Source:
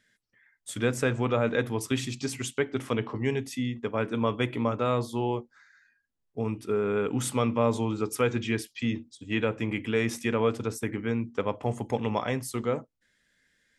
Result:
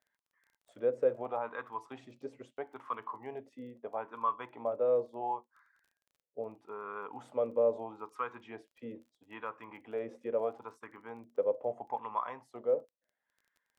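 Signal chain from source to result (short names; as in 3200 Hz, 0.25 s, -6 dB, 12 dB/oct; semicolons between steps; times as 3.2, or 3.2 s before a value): wah 0.76 Hz 510–1100 Hz, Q 6.4; crackle 17/s -58 dBFS; gain +4 dB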